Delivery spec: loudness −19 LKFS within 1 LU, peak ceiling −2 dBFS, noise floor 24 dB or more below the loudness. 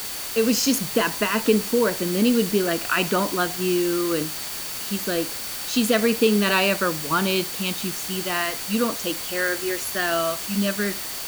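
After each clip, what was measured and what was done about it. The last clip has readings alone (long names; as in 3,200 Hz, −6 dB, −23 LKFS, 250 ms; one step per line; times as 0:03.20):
interfering tone 4,500 Hz; level of the tone −40 dBFS; background noise floor −32 dBFS; target noise floor −47 dBFS; integrated loudness −22.5 LKFS; sample peak −5.0 dBFS; target loudness −19.0 LKFS
→ notch filter 4,500 Hz, Q 30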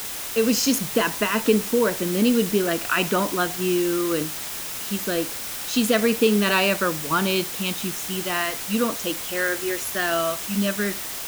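interfering tone none found; background noise floor −32 dBFS; target noise floor −47 dBFS
→ broadband denoise 15 dB, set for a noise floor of −32 dBFS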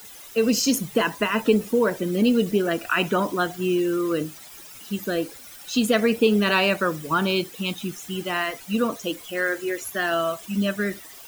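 background noise floor −43 dBFS; target noise floor −48 dBFS
→ broadband denoise 6 dB, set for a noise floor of −43 dBFS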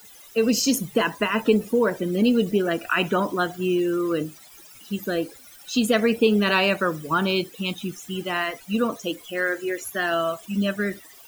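background noise floor −48 dBFS; integrated loudness −23.5 LKFS; sample peak −5.5 dBFS; target loudness −19.0 LKFS
→ level +4.5 dB
brickwall limiter −2 dBFS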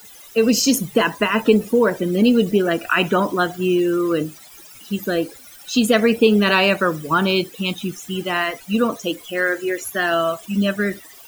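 integrated loudness −19.0 LKFS; sample peak −2.0 dBFS; background noise floor −43 dBFS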